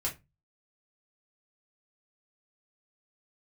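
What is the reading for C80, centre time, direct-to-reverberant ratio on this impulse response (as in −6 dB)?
22.5 dB, 16 ms, −4.0 dB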